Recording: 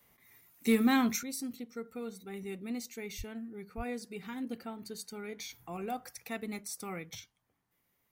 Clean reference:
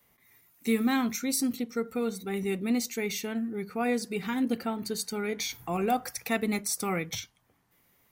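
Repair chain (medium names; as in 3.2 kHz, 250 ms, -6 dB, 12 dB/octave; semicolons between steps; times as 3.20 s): clip repair -17.5 dBFS; 1.23 s: gain correction +10.5 dB; 3.17–3.29 s: high-pass 140 Hz 24 dB/octave; 3.76–3.88 s: high-pass 140 Hz 24 dB/octave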